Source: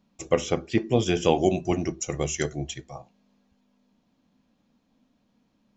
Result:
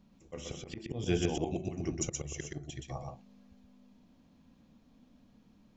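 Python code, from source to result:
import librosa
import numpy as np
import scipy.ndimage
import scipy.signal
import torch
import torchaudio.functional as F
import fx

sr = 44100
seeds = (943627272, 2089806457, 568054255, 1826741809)

p1 = fx.low_shelf(x, sr, hz=180.0, db=9.5)
p2 = fx.auto_swell(p1, sr, attack_ms=560.0)
y = p2 + fx.echo_single(p2, sr, ms=124, db=-3.0, dry=0)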